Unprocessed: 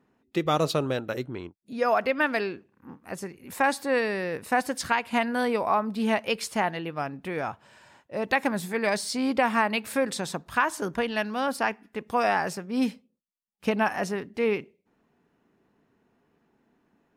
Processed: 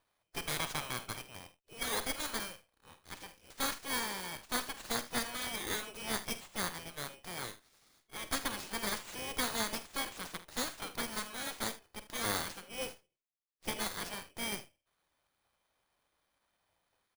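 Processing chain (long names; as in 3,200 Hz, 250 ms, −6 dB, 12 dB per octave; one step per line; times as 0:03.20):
samples in bit-reversed order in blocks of 16 samples
gate on every frequency bin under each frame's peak −15 dB weak
on a send: ambience of single reflections 48 ms −13.5 dB, 77 ms −16.5 dB
on the sum: windowed peak hold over 3 samples
level −3 dB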